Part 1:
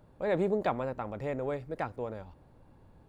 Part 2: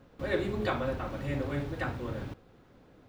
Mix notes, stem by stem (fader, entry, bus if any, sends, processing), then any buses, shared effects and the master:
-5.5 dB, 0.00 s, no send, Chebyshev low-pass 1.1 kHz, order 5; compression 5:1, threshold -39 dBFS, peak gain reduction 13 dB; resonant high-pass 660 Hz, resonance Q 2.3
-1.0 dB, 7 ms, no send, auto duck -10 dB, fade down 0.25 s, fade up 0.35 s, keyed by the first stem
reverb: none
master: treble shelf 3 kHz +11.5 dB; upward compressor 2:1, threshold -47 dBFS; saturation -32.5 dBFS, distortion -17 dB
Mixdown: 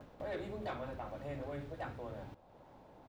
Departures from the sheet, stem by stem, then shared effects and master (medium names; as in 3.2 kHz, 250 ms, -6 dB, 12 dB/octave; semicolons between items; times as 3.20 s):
stem 2: polarity flipped; master: missing treble shelf 3 kHz +11.5 dB